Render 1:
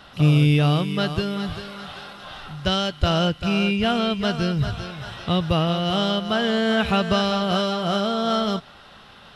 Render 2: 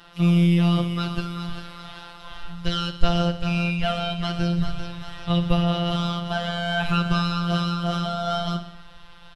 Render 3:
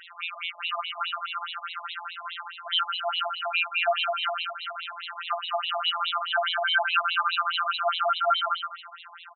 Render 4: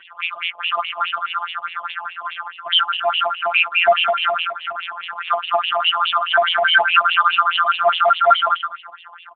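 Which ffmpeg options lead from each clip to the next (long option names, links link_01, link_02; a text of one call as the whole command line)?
ffmpeg -i in.wav -af "aecho=1:1:61|122|183|244|305|366:0.224|0.132|0.0779|0.046|0.0271|0.016,afftfilt=real='hypot(re,im)*cos(PI*b)':imag='0':win_size=1024:overlap=0.75,asubboost=boost=9.5:cutoff=81" out.wav
ffmpeg -i in.wav -af "acompressor=threshold=-22dB:ratio=2,aecho=1:1:127|254|381|508:0.376|0.135|0.0487|0.0175,afftfilt=real='re*between(b*sr/1024,800*pow(3000/800,0.5+0.5*sin(2*PI*4.8*pts/sr))/1.41,800*pow(3000/800,0.5+0.5*sin(2*PI*4.8*pts/sr))*1.41)':imag='im*between(b*sr/1024,800*pow(3000/800,0.5+0.5*sin(2*PI*4.8*pts/sr))/1.41,800*pow(3000/800,0.5+0.5*sin(2*PI*4.8*pts/sr))*1.41)':win_size=1024:overlap=0.75,volume=8.5dB" out.wav
ffmpeg -i in.wav -filter_complex "[0:a]asplit=2[link_01][link_02];[link_02]adynamicsmooth=sensitivity=5.5:basefreq=550,volume=0dB[link_03];[link_01][link_03]amix=inputs=2:normalize=0,volume=5.5dB" -ar 8000 -c:a libopencore_amrnb -b:a 6700 out.amr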